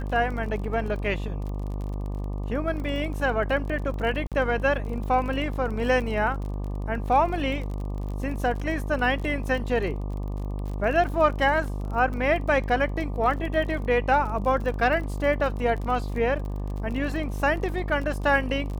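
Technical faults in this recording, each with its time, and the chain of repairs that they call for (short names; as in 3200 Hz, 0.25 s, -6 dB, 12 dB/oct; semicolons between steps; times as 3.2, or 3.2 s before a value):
buzz 50 Hz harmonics 24 -30 dBFS
crackle 32/s -33 dBFS
4.27–4.32 gap 47 ms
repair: de-click; de-hum 50 Hz, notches 24; interpolate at 4.27, 47 ms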